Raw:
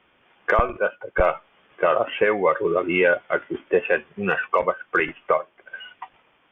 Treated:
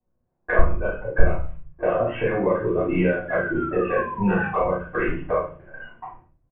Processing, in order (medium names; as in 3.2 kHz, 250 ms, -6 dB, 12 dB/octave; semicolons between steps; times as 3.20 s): level-controlled noise filter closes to 780 Hz, open at -18.5 dBFS; tilt EQ -3 dB/octave; gate with hold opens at -39 dBFS; compression 5:1, threshold -21 dBFS, peak gain reduction 17.5 dB; distance through air 210 m; doubling 34 ms -4 dB; painted sound fall, 3.28–4.67 s, 710–1700 Hz -34 dBFS; reverberation RT60 0.40 s, pre-delay 3 ms, DRR -7.5 dB; trim -7.5 dB